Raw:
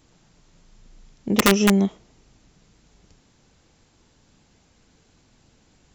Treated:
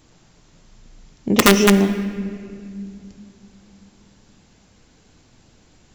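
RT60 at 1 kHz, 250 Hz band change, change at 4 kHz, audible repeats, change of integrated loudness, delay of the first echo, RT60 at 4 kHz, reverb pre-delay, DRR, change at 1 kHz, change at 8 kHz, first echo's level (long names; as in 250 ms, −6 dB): 1.9 s, +3.5 dB, +5.0 dB, no echo audible, +3.0 dB, no echo audible, 1.6 s, 3 ms, 9.5 dB, +5.0 dB, +4.5 dB, no echo audible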